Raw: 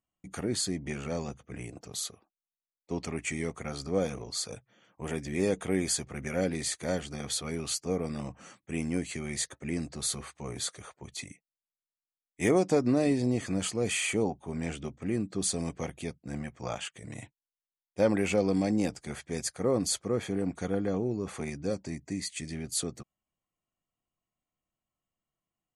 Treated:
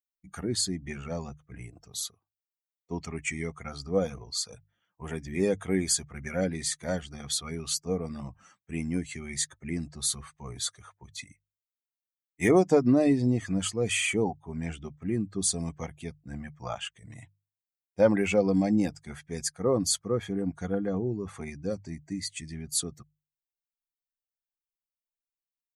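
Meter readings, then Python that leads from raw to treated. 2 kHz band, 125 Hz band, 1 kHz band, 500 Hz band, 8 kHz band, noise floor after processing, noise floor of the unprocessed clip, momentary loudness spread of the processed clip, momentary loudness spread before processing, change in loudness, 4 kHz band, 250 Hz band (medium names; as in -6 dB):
+1.5 dB, +2.0 dB, +1.5 dB, +2.0 dB, +2.5 dB, under -85 dBFS, under -85 dBFS, 17 LU, 14 LU, +2.5 dB, +2.0 dB, +2.0 dB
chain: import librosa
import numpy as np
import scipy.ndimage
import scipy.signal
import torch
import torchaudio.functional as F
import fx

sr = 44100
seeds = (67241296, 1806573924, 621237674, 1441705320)

y = fx.bin_expand(x, sr, power=1.5)
y = fx.hum_notches(y, sr, base_hz=50, count=3)
y = F.gain(torch.from_numpy(y), 5.5).numpy()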